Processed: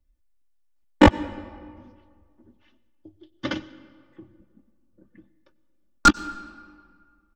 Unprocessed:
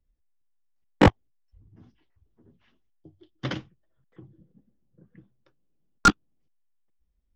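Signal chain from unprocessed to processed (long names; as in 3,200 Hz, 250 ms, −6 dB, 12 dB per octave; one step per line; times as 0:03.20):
comb filter 3.4 ms, depth 100%
on a send: convolution reverb RT60 1.9 s, pre-delay 88 ms, DRR 17.5 dB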